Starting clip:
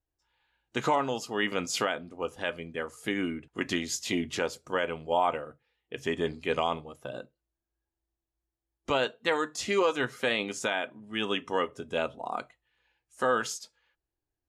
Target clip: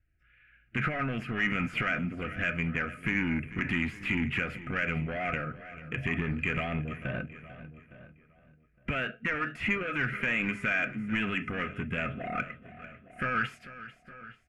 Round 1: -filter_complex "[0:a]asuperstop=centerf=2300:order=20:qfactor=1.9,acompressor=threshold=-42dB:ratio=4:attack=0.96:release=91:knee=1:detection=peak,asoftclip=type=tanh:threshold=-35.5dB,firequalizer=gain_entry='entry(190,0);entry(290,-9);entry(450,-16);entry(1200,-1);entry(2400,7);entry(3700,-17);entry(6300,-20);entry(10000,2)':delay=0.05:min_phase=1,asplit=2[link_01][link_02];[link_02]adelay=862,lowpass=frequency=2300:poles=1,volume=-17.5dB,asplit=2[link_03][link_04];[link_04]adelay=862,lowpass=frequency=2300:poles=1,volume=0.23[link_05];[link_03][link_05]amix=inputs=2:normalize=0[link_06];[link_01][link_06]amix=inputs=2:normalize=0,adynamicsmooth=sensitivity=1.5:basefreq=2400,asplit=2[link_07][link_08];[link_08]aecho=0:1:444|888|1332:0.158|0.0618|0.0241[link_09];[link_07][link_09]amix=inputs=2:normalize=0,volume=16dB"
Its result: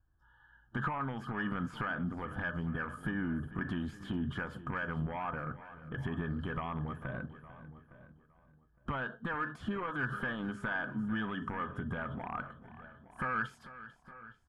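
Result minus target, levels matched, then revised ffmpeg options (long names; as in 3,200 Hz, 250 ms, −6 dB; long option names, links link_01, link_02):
downward compressor: peak gain reduction +7.5 dB; 1,000 Hz band +4.5 dB
-filter_complex "[0:a]asuperstop=centerf=960:order=20:qfactor=1.9,acompressor=threshold=-33dB:ratio=4:attack=0.96:release=91:knee=1:detection=peak,asoftclip=type=tanh:threshold=-35.5dB,firequalizer=gain_entry='entry(190,0);entry(290,-9);entry(450,-16);entry(1200,-1);entry(2400,7);entry(3700,-17);entry(6300,-20);entry(10000,2)':delay=0.05:min_phase=1,asplit=2[link_01][link_02];[link_02]adelay=862,lowpass=frequency=2300:poles=1,volume=-17.5dB,asplit=2[link_03][link_04];[link_04]adelay=862,lowpass=frequency=2300:poles=1,volume=0.23[link_05];[link_03][link_05]amix=inputs=2:normalize=0[link_06];[link_01][link_06]amix=inputs=2:normalize=0,adynamicsmooth=sensitivity=1.5:basefreq=2400,asplit=2[link_07][link_08];[link_08]aecho=0:1:444|888|1332:0.158|0.0618|0.0241[link_09];[link_07][link_09]amix=inputs=2:normalize=0,volume=16dB"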